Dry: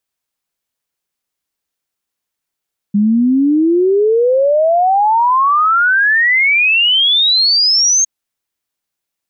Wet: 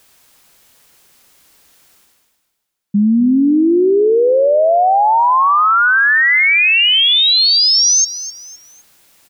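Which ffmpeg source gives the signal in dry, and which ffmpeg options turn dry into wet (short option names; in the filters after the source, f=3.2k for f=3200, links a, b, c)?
-f lavfi -i "aevalsrc='0.376*clip(min(t,5.11-t)/0.01,0,1)*sin(2*PI*200*5.11/log(6500/200)*(exp(log(6500/200)*t/5.11)-1))':d=5.11:s=44100"
-af "areverse,acompressor=mode=upward:threshold=-28dB:ratio=2.5,areverse,aecho=1:1:256|512|768:0.2|0.0678|0.0231"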